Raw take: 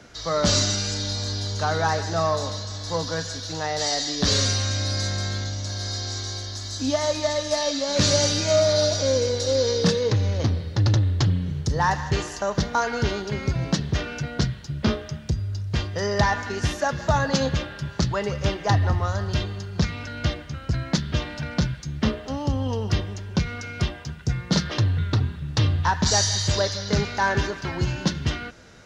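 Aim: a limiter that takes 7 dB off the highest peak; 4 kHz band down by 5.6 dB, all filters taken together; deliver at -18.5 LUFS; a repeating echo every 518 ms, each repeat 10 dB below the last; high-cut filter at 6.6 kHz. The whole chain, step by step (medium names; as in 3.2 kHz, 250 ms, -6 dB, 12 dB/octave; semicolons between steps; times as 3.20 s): low-pass 6.6 kHz; peaking EQ 4 kHz -6 dB; peak limiter -16 dBFS; feedback delay 518 ms, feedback 32%, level -10 dB; trim +8.5 dB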